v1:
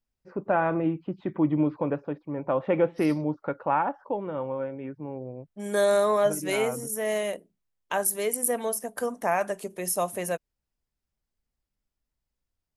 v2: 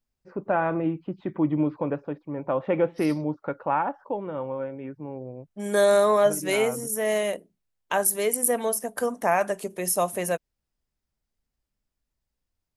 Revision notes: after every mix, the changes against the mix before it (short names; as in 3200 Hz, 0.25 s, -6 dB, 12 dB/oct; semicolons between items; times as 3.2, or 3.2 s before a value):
second voice +3.0 dB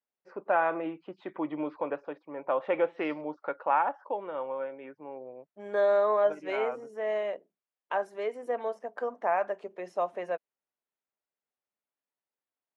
second voice: add tape spacing loss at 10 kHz 45 dB; master: add HPF 530 Hz 12 dB/oct